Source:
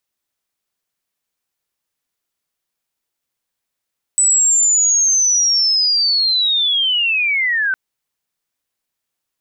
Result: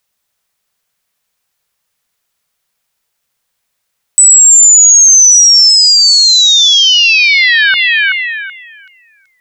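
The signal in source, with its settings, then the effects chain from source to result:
sweep linear 8 kHz -> 1.5 kHz -10 dBFS -> -14.5 dBFS 3.56 s
peaking EQ 310 Hz -14.5 dB 0.33 oct; on a send: repeats whose band climbs or falls 379 ms, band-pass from 1.6 kHz, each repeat 0.7 oct, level -6 dB; on the sum: loudness maximiser +11 dB

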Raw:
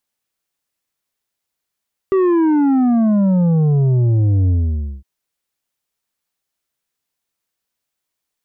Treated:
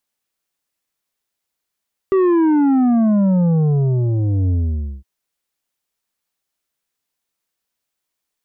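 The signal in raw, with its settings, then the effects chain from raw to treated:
sub drop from 390 Hz, over 2.91 s, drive 7 dB, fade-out 0.54 s, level -12 dB
peaking EQ 110 Hz -4 dB 0.68 oct

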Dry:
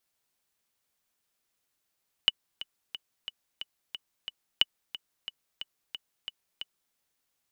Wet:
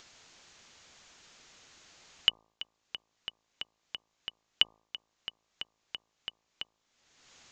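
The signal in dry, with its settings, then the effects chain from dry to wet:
metronome 180 bpm, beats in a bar 7, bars 2, 2.96 kHz, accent 16 dB -7 dBFS
elliptic low-pass 7 kHz, stop band 40 dB; de-hum 54.59 Hz, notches 22; upward compressor, threshold -37 dBFS

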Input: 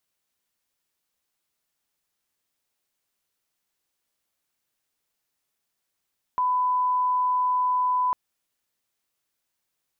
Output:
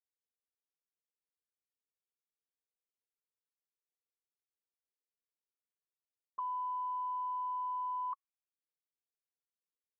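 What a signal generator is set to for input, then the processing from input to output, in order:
line-up tone -20 dBFS 1.75 s
high-order bell 690 Hz -14.5 dB 1.1 oct; waveshaping leveller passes 1; auto-wah 490–1100 Hz, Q 12, up, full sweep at -33.5 dBFS

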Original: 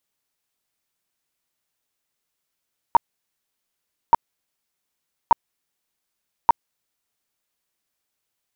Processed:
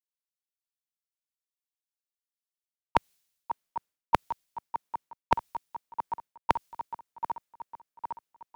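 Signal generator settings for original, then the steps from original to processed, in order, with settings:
tone bursts 933 Hz, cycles 16, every 1.18 s, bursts 4, -7.5 dBFS
backward echo that repeats 404 ms, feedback 82%, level -14 dB; reverse; compression 6:1, threshold -27 dBFS; reverse; three bands expanded up and down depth 100%

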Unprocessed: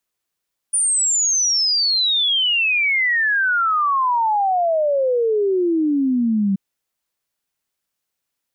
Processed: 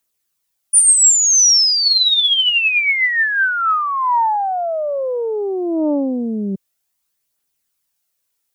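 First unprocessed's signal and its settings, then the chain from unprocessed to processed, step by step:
log sweep 9.5 kHz -> 190 Hz 5.83 s -15 dBFS
treble shelf 5.1 kHz +9 dB; phaser 0.27 Hz, delay 4.1 ms, feedback 34%; loudspeaker Doppler distortion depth 0.52 ms

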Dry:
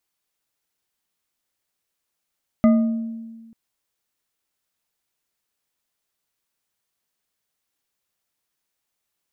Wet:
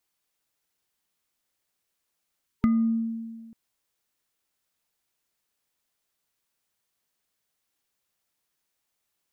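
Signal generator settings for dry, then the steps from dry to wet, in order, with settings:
glass hit bar, lowest mode 227 Hz, modes 4, decay 1.53 s, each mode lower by 8 dB, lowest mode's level -10 dB
time-frequency box 2.47–3.38 s, 420–910 Hz -26 dB; compression, threshold -20 dBFS

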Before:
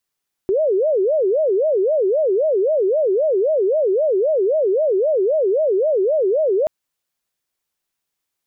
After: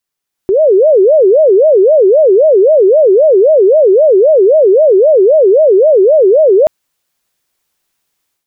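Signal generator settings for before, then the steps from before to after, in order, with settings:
siren wail 371–636 Hz 3.8 per s sine -14 dBFS 6.18 s
level rider gain up to 12 dB

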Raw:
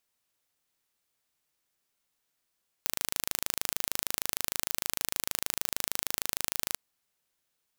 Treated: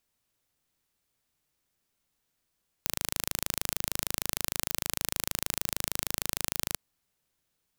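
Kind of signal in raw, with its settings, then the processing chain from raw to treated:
pulse train 26.5 per s, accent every 0, -2 dBFS 3.89 s
bass shelf 270 Hz +10 dB

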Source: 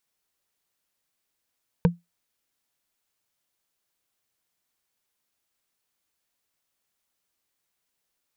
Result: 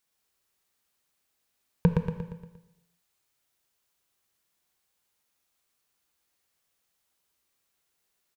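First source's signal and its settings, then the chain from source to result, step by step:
wood hit, lowest mode 172 Hz, decay 0.18 s, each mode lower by 4.5 dB, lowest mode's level -11 dB
on a send: feedback delay 117 ms, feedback 49%, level -3.5 dB; on the sum: gated-style reverb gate 410 ms falling, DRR 8.5 dB

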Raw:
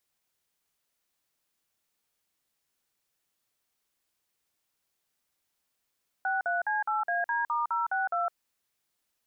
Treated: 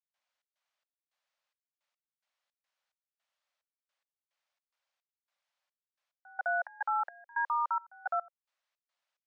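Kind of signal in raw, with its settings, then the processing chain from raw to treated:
DTMF "63C8AD*062", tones 160 ms, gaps 48 ms, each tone -28.5 dBFS
elliptic high-pass 550 Hz; distance through air 130 m; trance gate ".xx.xx..xxx..x." 108 bpm -24 dB

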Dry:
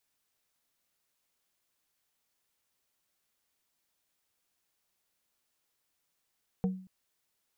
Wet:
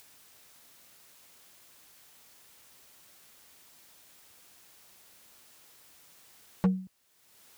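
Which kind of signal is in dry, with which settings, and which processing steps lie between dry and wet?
wood hit plate, length 0.23 s, lowest mode 187 Hz, modes 3, decay 0.47 s, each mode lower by 7 dB, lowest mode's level -23.5 dB
high-pass 48 Hz; in parallel at +3 dB: upward compressor, threshold -45 dBFS; on the sum: wavefolder -17.5 dBFS

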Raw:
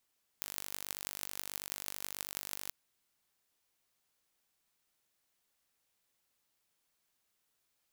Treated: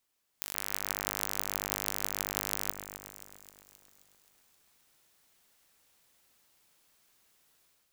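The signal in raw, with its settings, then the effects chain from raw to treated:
pulse train 49.2 per s, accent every 8, -9 dBFS 2.28 s
level rider gain up to 11 dB; on a send: echo whose repeats swap between lows and highs 132 ms, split 2.2 kHz, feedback 75%, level -8 dB

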